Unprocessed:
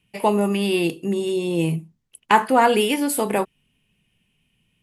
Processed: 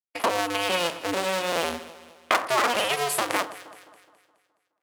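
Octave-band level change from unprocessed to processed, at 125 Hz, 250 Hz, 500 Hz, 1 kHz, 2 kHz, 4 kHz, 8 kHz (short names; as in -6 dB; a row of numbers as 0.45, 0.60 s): -15.5, -13.5, -6.0, -5.0, 0.0, +1.5, -0.5 dB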